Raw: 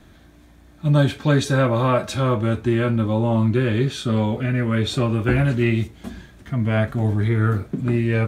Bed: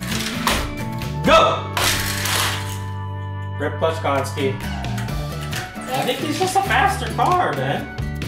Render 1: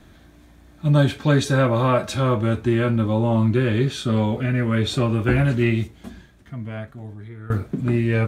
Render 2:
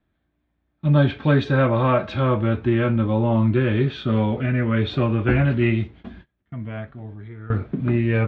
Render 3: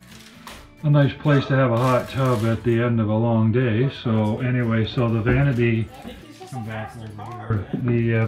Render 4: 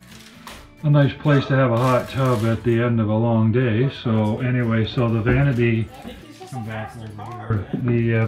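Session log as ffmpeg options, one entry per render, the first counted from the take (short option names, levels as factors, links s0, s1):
-filter_complex "[0:a]asplit=2[s0][s1];[s0]atrim=end=7.5,asetpts=PTS-STARTPTS,afade=t=out:st=5.65:d=1.85:c=qua:silence=0.112202[s2];[s1]atrim=start=7.5,asetpts=PTS-STARTPTS,afade=t=in:d=0.004:c=hsin:silence=0.112202[s3];[s2][s3]concat=n=2:v=0:a=1"
-af "lowpass=f=3400:w=0.5412,lowpass=f=3400:w=1.3066,agate=range=0.0708:threshold=0.00794:ratio=16:detection=peak"
-filter_complex "[1:a]volume=0.1[s0];[0:a][s0]amix=inputs=2:normalize=0"
-af "volume=1.12"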